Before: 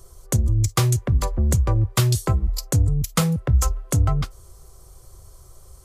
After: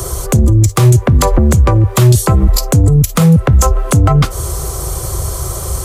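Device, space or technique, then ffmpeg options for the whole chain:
mastering chain: -filter_complex "[0:a]highpass=52,equalizer=f=4900:t=o:w=0.54:g=-3,acrossover=split=180|1000[s0][s1][s2];[s0]acompressor=threshold=0.0282:ratio=4[s3];[s1]acompressor=threshold=0.0251:ratio=4[s4];[s2]acompressor=threshold=0.0141:ratio=4[s5];[s3][s4][s5]amix=inputs=3:normalize=0,acompressor=threshold=0.02:ratio=2,asoftclip=type=tanh:threshold=0.1,alimiter=level_in=35.5:limit=0.891:release=50:level=0:latency=1,volume=0.891"

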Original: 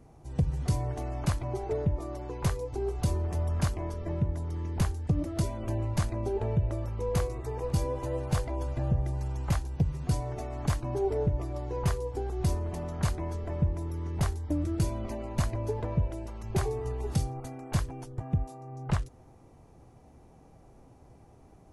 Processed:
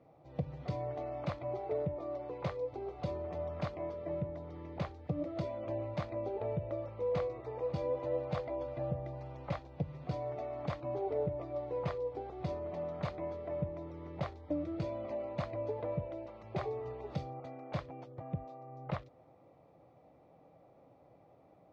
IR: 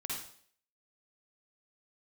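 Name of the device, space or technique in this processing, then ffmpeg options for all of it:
kitchen radio: -af "highpass=200,equalizer=f=230:t=q:w=4:g=-9,equalizer=f=390:t=q:w=4:g=-8,equalizer=f=560:t=q:w=4:g=7,equalizer=f=940:t=q:w=4:g=-5,equalizer=f=1600:t=q:w=4:g=-9,equalizer=f=2900:t=q:w=4:g=-7,lowpass=f=3500:w=0.5412,lowpass=f=3500:w=1.3066,volume=0.841"

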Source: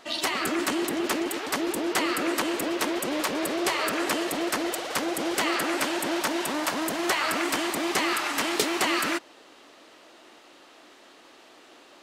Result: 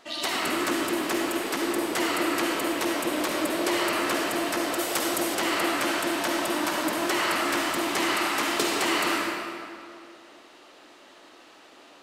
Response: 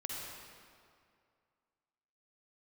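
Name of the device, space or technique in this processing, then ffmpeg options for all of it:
stairwell: -filter_complex "[1:a]atrim=start_sample=2205[s0];[0:a][s0]afir=irnorm=-1:irlink=0,asettb=1/sr,asplit=3[s1][s2][s3];[s1]atrim=end=4.794[s4];[s2]atrim=start=4.79:end=5.35,asetpts=PTS-STARTPTS,afade=t=in:d=0.004:c=qsin,afade=t=out:st=0.556:d=0.004:c=qsin,highshelf=f=5600:g=8[s5];[s3]atrim=start=5.346[s6];[s4][s5]acrossfade=d=0.004:c1=hsin:c2=qsin[s7];[s7][s6]acrossfade=d=0.004:c1=qsin:c2=hsin"

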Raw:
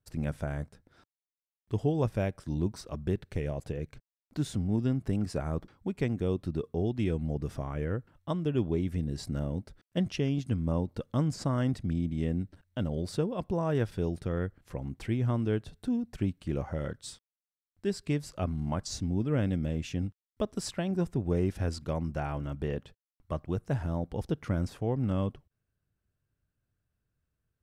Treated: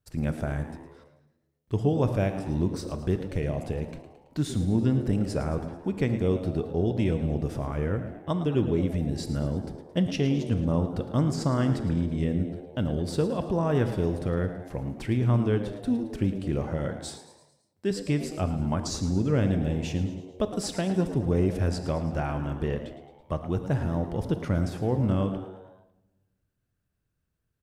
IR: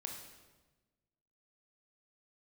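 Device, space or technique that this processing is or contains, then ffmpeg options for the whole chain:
keyed gated reverb: -filter_complex "[0:a]asplit=3[s0][s1][s2];[1:a]atrim=start_sample=2205[s3];[s1][s3]afir=irnorm=-1:irlink=0[s4];[s2]apad=whole_len=1218346[s5];[s4][s5]sidechaingate=range=0.355:threshold=0.00355:ratio=16:detection=peak,volume=0.891[s6];[s0][s6]amix=inputs=2:normalize=0,asettb=1/sr,asplit=3[s7][s8][s9];[s7]atrim=end=17.084[s10];[s8]atrim=start=17.08:end=17.91,asetpts=PTS-STARTPTS,afade=t=in:d=0.004:c=qsin,afade=t=out:st=0.826:d=0.004:c=qsin,highpass=110[s11];[s9]atrim=start=17.906[s12];[s10][s11]acrossfade=d=0.004:c1=hsin:c2=qsin[s13];[s13][s12]acrossfade=d=0.004:c1=qsin:c2=hsin,asplit=6[s14][s15][s16][s17][s18][s19];[s15]adelay=110,afreqshift=91,volume=0.224[s20];[s16]adelay=220,afreqshift=182,volume=0.119[s21];[s17]adelay=330,afreqshift=273,volume=0.0631[s22];[s18]adelay=440,afreqshift=364,volume=0.0335[s23];[s19]adelay=550,afreqshift=455,volume=0.0176[s24];[s14][s20][s21][s22][s23][s24]amix=inputs=6:normalize=0"

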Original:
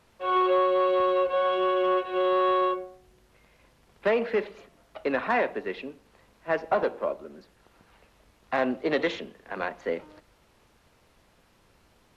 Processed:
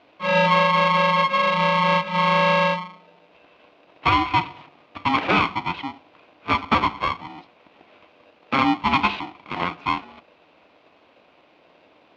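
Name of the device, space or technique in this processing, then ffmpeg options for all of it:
ring modulator pedal into a guitar cabinet: -af "aeval=exprs='val(0)*sgn(sin(2*PI*540*n/s))':c=same,highpass=110,equalizer=f=120:t=q:w=4:g=-7,equalizer=f=290:t=q:w=4:g=7,equalizer=f=690:t=q:w=4:g=5,equalizer=f=1000:t=q:w=4:g=3,equalizer=f=1700:t=q:w=4:g=-6,equalizer=f=2500:t=q:w=4:g=6,lowpass=f=3900:w=0.5412,lowpass=f=3900:w=1.3066,volume=1.78"

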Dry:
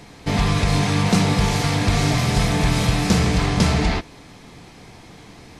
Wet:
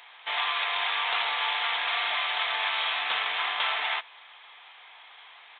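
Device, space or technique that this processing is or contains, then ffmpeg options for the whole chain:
musical greeting card: -filter_complex "[0:a]asettb=1/sr,asplit=3[s0][s1][s2];[s0]atrim=end=3.034[s3];[s1]atrim=start=3.03:end=3.58,asetpts=PTS-STARTPTS,afade=t=in:d=0.004:c=qsin,afade=t=out:st=0.546:d=0.004:c=qsin,bass=f=250:g=7,treble=f=4000:g=0[s4];[s2]atrim=start=3.576[s5];[s3][s4]acrossfade=d=0.004:c1=hsin:c2=qsin[s6];[s6][s5]acrossfade=d=0.004:c1=qsin:c2=hsin,aresample=8000,aresample=44100,highpass=f=880:w=0.5412,highpass=f=880:w=1.3066,equalizer=f=3300:t=o:w=0.44:g=5,volume=0.891"

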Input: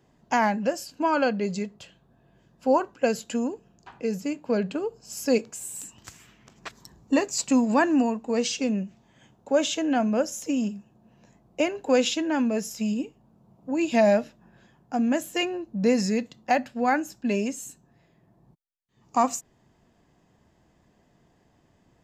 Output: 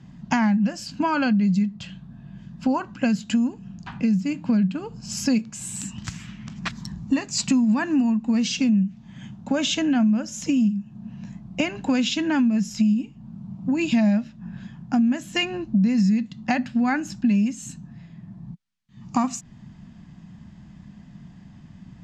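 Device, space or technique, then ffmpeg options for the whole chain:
jukebox: -af "lowpass=5600,tiltshelf=f=630:g=-5,lowshelf=f=290:t=q:w=3:g=14,acompressor=threshold=0.0447:ratio=4,volume=2.11"

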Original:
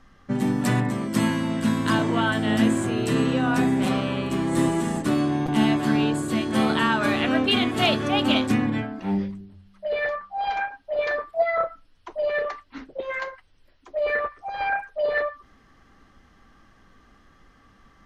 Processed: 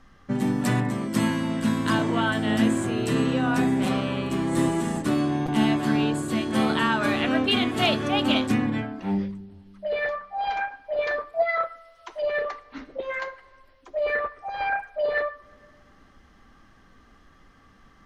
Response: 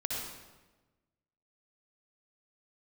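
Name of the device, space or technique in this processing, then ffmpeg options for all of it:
compressed reverb return: -filter_complex "[0:a]asplit=3[s0][s1][s2];[s0]afade=t=out:st=11.48:d=0.02[s3];[s1]tiltshelf=f=1100:g=-8,afade=t=in:st=11.48:d=0.02,afade=t=out:st=12.21:d=0.02[s4];[s2]afade=t=in:st=12.21:d=0.02[s5];[s3][s4][s5]amix=inputs=3:normalize=0,asplit=2[s6][s7];[1:a]atrim=start_sample=2205[s8];[s7][s8]afir=irnorm=-1:irlink=0,acompressor=threshold=0.0251:ratio=6,volume=0.211[s9];[s6][s9]amix=inputs=2:normalize=0,volume=0.841"

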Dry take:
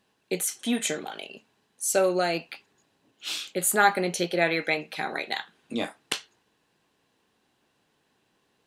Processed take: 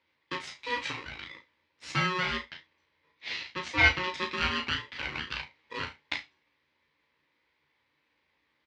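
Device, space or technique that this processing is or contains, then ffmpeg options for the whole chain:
ring modulator pedal into a guitar cabinet: -filter_complex "[0:a]aeval=exprs='val(0)*sgn(sin(2*PI*730*n/s))':c=same,highpass=92,equalizer=f=97:t=q:w=4:g=-7,equalizer=f=190:t=q:w=4:g=-9,equalizer=f=400:t=q:w=4:g=-4,equalizer=f=700:t=q:w=4:g=-5,equalizer=f=1200:t=q:w=4:g=-5,equalizer=f=2100:t=q:w=4:g=8,lowpass=f=4500:w=0.5412,lowpass=f=4500:w=1.3066,asettb=1/sr,asplit=3[s0][s1][s2];[s0]atrim=end=2.504[s3];[s1]atrim=start=2.5:end=4.13,asetpts=PTS-STARTPTS,afade=t=in:d=0.004:c=qsin,afade=t=out:st=1.626:d=0.004:c=qsin,lowpass=f=7300:w=0.5412,lowpass=f=7300:w=1.3066[s4];[s2]atrim=start=4.126[s5];[s3][s4]acrossfade=d=0.004:c1=hsin:c2=qsin[s6];[s6][s5]acrossfade=d=0.004:c1=qsin:c2=hsin,equalizer=f=82:w=0.85:g=5.5,asplit=2[s7][s8];[s8]adelay=35,volume=0.355[s9];[s7][s9]amix=inputs=2:normalize=0,aecho=1:1:13|34:0.473|0.355,volume=0.501"

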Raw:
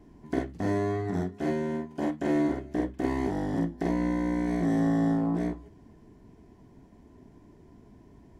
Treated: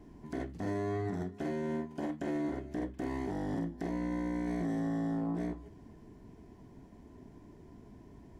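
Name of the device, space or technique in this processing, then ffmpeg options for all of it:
stacked limiters: -af "alimiter=limit=0.0841:level=0:latency=1:release=25,alimiter=level_in=1.5:limit=0.0631:level=0:latency=1:release=221,volume=0.668"

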